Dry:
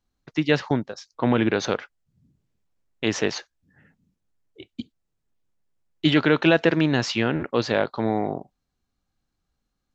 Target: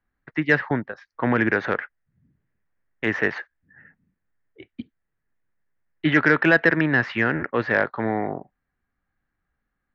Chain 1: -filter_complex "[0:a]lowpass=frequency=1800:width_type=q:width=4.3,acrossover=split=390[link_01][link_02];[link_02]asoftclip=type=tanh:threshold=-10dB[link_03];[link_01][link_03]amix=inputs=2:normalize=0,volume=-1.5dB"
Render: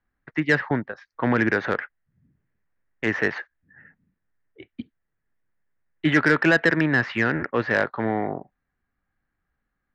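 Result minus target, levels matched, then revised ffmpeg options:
soft clipping: distortion +8 dB
-filter_complex "[0:a]lowpass=frequency=1800:width_type=q:width=4.3,acrossover=split=390[link_01][link_02];[link_02]asoftclip=type=tanh:threshold=-4dB[link_03];[link_01][link_03]amix=inputs=2:normalize=0,volume=-1.5dB"

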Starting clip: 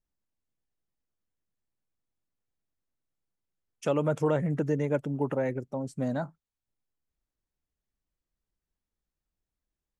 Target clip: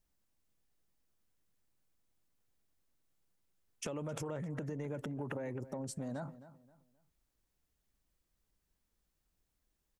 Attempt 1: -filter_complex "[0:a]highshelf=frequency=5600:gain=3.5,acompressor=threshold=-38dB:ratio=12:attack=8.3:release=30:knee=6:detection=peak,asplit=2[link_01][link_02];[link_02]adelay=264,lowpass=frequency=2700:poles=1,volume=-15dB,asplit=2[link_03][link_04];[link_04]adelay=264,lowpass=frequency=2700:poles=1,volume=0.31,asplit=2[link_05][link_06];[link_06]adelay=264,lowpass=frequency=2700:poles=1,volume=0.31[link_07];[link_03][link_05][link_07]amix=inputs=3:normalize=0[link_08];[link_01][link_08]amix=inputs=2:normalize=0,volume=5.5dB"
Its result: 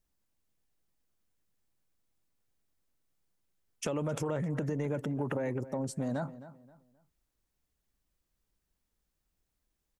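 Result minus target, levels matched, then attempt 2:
downward compressor: peak gain reduction −7.5 dB
-filter_complex "[0:a]highshelf=frequency=5600:gain=3.5,acompressor=threshold=-46dB:ratio=12:attack=8.3:release=30:knee=6:detection=peak,asplit=2[link_01][link_02];[link_02]adelay=264,lowpass=frequency=2700:poles=1,volume=-15dB,asplit=2[link_03][link_04];[link_04]adelay=264,lowpass=frequency=2700:poles=1,volume=0.31,asplit=2[link_05][link_06];[link_06]adelay=264,lowpass=frequency=2700:poles=1,volume=0.31[link_07];[link_03][link_05][link_07]amix=inputs=3:normalize=0[link_08];[link_01][link_08]amix=inputs=2:normalize=0,volume=5.5dB"

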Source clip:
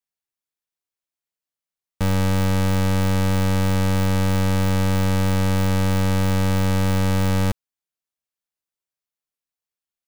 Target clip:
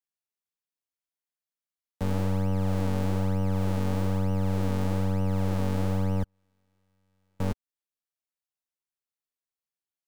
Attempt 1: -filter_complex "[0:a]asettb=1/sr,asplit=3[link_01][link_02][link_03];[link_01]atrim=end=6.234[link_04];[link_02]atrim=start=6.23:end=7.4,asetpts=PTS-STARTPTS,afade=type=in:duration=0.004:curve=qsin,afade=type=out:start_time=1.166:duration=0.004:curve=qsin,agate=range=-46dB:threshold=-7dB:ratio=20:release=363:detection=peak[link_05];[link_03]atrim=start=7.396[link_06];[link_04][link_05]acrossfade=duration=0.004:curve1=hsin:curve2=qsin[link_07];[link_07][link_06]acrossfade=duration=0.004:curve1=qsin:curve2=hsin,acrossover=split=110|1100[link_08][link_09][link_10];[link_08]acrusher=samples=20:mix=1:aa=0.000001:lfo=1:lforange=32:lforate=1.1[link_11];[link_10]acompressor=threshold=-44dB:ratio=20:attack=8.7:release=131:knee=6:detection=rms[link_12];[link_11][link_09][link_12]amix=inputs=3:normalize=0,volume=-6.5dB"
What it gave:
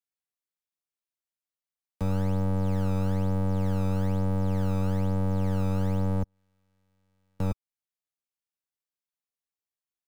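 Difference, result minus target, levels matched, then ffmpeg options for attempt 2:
sample-and-hold swept by an LFO: distortion −12 dB
-filter_complex "[0:a]asettb=1/sr,asplit=3[link_01][link_02][link_03];[link_01]atrim=end=6.234[link_04];[link_02]atrim=start=6.23:end=7.4,asetpts=PTS-STARTPTS,afade=type=in:duration=0.004:curve=qsin,afade=type=out:start_time=1.166:duration=0.004:curve=qsin,agate=range=-46dB:threshold=-7dB:ratio=20:release=363:detection=peak[link_05];[link_03]atrim=start=7.396[link_06];[link_04][link_05]acrossfade=duration=0.004:curve1=hsin:curve2=qsin[link_07];[link_07][link_06]acrossfade=duration=0.004:curve1=qsin:curve2=hsin,acrossover=split=110|1100[link_08][link_09][link_10];[link_08]acrusher=samples=75:mix=1:aa=0.000001:lfo=1:lforange=120:lforate=1.1[link_11];[link_10]acompressor=threshold=-44dB:ratio=20:attack=8.7:release=131:knee=6:detection=rms[link_12];[link_11][link_09][link_12]amix=inputs=3:normalize=0,volume=-6.5dB"

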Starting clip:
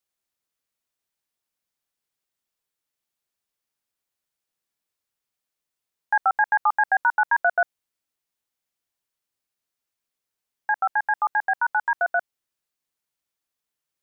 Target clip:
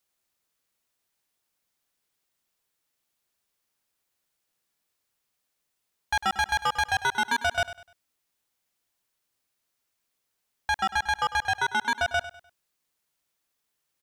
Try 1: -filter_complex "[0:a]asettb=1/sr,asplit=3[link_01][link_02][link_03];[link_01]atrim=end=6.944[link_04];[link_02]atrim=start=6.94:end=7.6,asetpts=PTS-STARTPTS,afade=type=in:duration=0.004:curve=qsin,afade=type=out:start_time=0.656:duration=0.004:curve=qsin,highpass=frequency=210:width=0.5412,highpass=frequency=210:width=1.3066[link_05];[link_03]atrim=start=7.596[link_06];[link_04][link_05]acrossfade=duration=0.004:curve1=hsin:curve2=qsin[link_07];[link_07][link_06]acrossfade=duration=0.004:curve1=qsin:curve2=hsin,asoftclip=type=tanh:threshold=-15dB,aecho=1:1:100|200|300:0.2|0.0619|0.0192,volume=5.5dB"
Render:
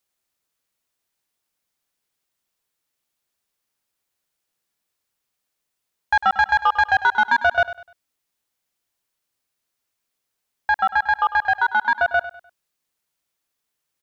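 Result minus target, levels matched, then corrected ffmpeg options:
soft clipping: distortion −11 dB
-filter_complex "[0:a]asettb=1/sr,asplit=3[link_01][link_02][link_03];[link_01]atrim=end=6.944[link_04];[link_02]atrim=start=6.94:end=7.6,asetpts=PTS-STARTPTS,afade=type=in:duration=0.004:curve=qsin,afade=type=out:start_time=0.656:duration=0.004:curve=qsin,highpass=frequency=210:width=0.5412,highpass=frequency=210:width=1.3066[link_05];[link_03]atrim=start=7.596[link_06];[link_04][link_05]acrossfade=duration=0.004:curve1=hsin:curve2=qsin[link_07];[link_07][link_06]acrossfade=duration=0.004:curve1=qsin:curve2=hsin,asoftclip=type=tanh:threshold=-27dB,aecho=1:1:100|200|300:0.2|0.0619|0.0192,volume=5.5dB"

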